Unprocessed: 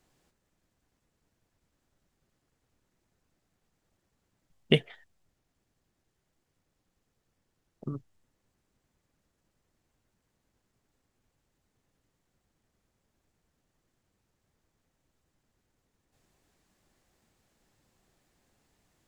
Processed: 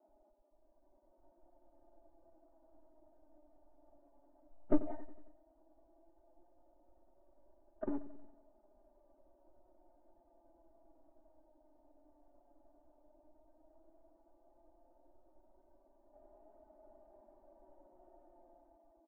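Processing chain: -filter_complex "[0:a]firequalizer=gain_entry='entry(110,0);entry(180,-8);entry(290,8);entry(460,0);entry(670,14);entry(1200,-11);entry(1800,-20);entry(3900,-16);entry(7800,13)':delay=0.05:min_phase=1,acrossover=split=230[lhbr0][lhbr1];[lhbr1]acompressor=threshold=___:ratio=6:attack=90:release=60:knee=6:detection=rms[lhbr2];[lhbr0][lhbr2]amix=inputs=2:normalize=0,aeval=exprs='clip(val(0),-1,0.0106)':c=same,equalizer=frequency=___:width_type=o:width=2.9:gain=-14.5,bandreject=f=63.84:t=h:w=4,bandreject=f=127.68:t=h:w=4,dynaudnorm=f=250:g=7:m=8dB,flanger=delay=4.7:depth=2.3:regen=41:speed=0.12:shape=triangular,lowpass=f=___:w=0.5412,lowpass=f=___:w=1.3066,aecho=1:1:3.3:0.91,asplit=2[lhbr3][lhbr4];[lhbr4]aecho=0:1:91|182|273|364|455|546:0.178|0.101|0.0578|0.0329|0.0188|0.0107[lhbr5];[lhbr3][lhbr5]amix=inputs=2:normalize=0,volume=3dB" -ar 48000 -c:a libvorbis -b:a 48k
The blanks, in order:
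-51dB, 98, 1700, 1700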